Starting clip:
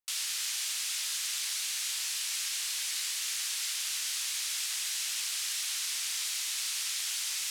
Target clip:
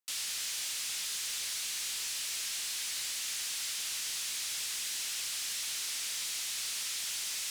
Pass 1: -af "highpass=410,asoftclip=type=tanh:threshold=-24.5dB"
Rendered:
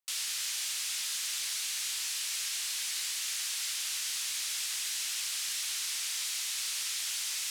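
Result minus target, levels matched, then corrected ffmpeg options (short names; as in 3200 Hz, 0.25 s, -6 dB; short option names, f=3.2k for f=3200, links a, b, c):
soft clip: distortion -9 dB
-af "highpass=410,asoftclip=type=tanh:threshold=-31dB"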